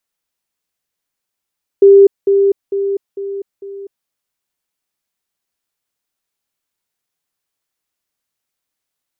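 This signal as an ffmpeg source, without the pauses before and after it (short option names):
-f lavfi -i "aevalsrc='pow(10,(-2-6*floor(t/0.45))/20)*sin(2*PI*396*t)*clip(min(mod(t,0.45),0.25-mod(t,0.45))/0.005,0,1)':d=2.25:s=44100"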